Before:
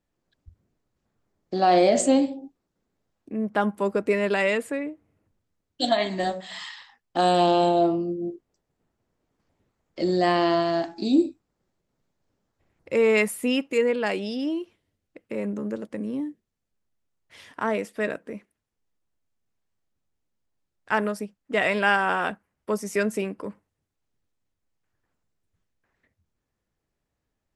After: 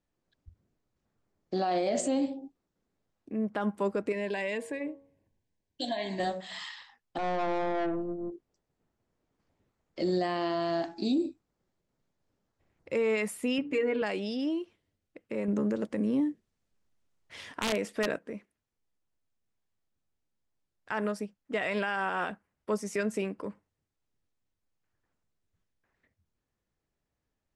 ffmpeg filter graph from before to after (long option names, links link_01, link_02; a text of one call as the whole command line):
ffmpeg -i in.wav -filter_complex "[0:a]asettb=1/sr,asplit=3[link_01][link_02][link_03];[link_01]atrim=end=4.124[link_04];[link_02]atrim=start=4.12:end=6.2,asetpts=PTS-STARTPTS,afade=type=in:duration=0.004:curve=qsin,afade=type=out:start_time=2.076:duration=0.004:curve=qsin,bandreject=frequency=92.38:width_type=h:width=4,bandreject=frequency=184.76:width_type=h:width=4,bandreject=frequency=277.14:width_type=h:width=4,bandreject=frequency=369.52:width_type=h:width=4,bandreject=frequency=461.9:width_type=h:width=4,bandreject=frequency=554.28:width_type=h:width=4,bandreject=frequency=646.66:width_type=h:width=4,bandreject=frequency=739.04:width_type=h:width=4,bandreject=frequency=831.42:width_type=h:width=4,bandreject=frequency=923.8:width_type=h:width=4,bandreject=frequency=1016.18:width_type=h:width=4,bandreject=frequency=1108.56:width_type=h:width=4,bandreject=frequency=1200.94:width_type=h:width=4,bandreject=frequency=1293.32:width_type=h:width=4,bandreject=frequency=1385.7:width_type=h:width=4,acompressor=threshold=-27dB:ratio=3:attack=3.2:release=140:knee=1:detection=peak,asuperstop=centerf=1300:order=8:qfactor=3.7[link_05];[link_03]atrim=start=6.196[link_06];[link_04][link_05]acrossfade=duration=0.004:curve1=hsin:curve2=qsin[link_07];[link_07][link_06]acrossfade=duration=0.004:curve1=qsin:curve2=hsin,asettb=1/sr,asplit=3[link_08][link_09][link_10];[link_08]atrim=end=7.184[link_11];[link_09]atrim=start=7.18:end=8.32,asetpts=PTS-STARTPTS,afade=type=in:duration=0.004:curve=qsin,afade=type=out:start_time=1.136:duration=0.004:curve=qsin,lowpass=1600,aeval=exprs='(tanh(15.8*val(0)+0.55)-tanh(0.55))/15.8':channel_layout=same[link_12];[link_10]atrim=start=8.316[link_13];[link_11][link_12]acrossfade=duration=0.004:curve1=hsin:curve2=qsin[link_14];[link_14][link_13]acrossfade=duration=0.004:curve1=qsin:curve2=hsin,asettb=1/sr,asplit=3[link_15][link_16][link_17];[link_15]atrim=end=13.584[link_18];[link_16]atrim=start=13.58:end=14.02,asetpts=PTS-STARTPTS,afade=type=in:duration=0.004:curve=qsin,afade=type=out:start_time=0.436:duration=0.004:curve=qsin,bass=frequency=250:gain=5,treble=frequency=4000:gain=-12,aecho=1:1:6.9:0.83,atrim=end_sample=19404,bandreject=frequency=57.76:width_type=h:width=4,bandreject=frequency=115.52:width_type=h:width=4,bandreject=frequency=173.28:width_type=h:width=4,bandreject=frequency=231.04:width_type=h:width=4,bandreject=frequency=288.8:width_type=h:width=4,bandreject=frequency=346.56:width_type=h:width=4,bandreject=frequency=404.32:width_type=h:width=4,bandreject=frequency=462.08:width_type=h:width=4[link_19];[link_17]atrim=start=14.016[link_20];[link_18][link_19]acrossfade=duration=0.004:curve1=hsin:curve2=qsin[link_21];[link_21][link_20]acrossfade=duration=0.004:curve1=qsin:curve2=hsin,asettb=1/sr,asplit=3[link_22][link_23][link_24];[link_22]atrim=end=15.484[link_25];[link_23]atrim=start=15.48:end=18.19,asetpts=PTS-STARTPTS,afade=type=in:duration=0.004:curve=qsin,afade=type=out:start_time=2.706:duration=0.004:curve=qsin,acontrast=64,aeval=exprs='(mod(3.35*val(0)+1,2)-1)/3.35':channel_layout=same[link_26];[link_24]atrim=start=18.186[link_27];[link_25][link_26]acrossfade=duration=0.004:curve1=hsin:curve2=qsin[link_28];[link_28][link_27]acrossfade=duration=0.004:curve1=qsin:curve2=hsin,lowpass=9000,alimiter=limit=-17.5dB:level=0:latency=1:release=68,volume=-3.5dB" out.wav